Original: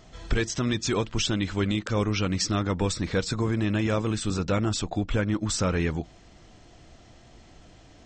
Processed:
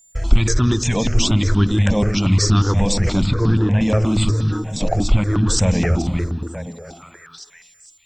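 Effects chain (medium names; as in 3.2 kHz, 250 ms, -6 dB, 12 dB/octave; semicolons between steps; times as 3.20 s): chunks repeated in reverse 223 ms, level -11 dB; gate -41 dBFS, range -44 dB; bass shelf 140 Hz +9.5 dB; in parallel at -2.5 dB: compressor with a negative ratio -30 dBFS, ratio -1; 4.31–4.81 s: on the sum: inharmonic resonator 150 Hz, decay 0.24 s, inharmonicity 0.002; whistle 7.2 kHz -55 dBFS; word length cut 12-bit, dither none; 3.26–3.81 s: distance through air 200 m; repeats whose band climbs or falls 460 ms, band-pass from 240 Hz, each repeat 1.4 oct, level -6 dB; on a send at -16.5 dB: reverberation RT60 1.1 s, pre-delay 151 ms; on the sum: stepped phaser 8.4 Hz 370–2100 Hz; trim +5.5 dB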